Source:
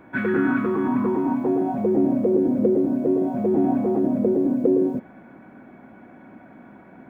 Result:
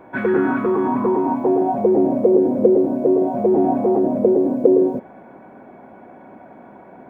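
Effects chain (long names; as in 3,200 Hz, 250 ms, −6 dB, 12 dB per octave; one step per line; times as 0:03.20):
flat-topped bell 630 Hz +8 dB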